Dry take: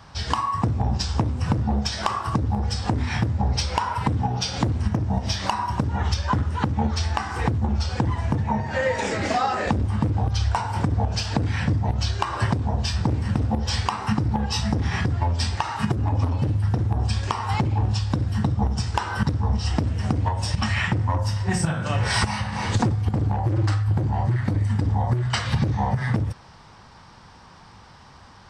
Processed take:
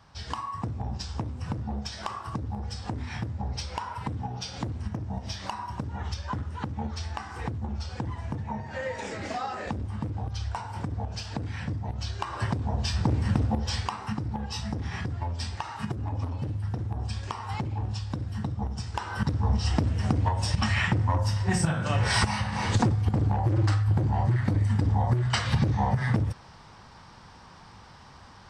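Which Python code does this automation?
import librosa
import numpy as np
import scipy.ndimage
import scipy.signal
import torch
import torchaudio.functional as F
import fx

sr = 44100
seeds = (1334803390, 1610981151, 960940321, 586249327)

y = fx.gain(x, sr, db=fx.line((11.9, -10.0), (13.29, -1.0), (14.1, -9.0), (18.89, -9.0), (19.48, -2.0)))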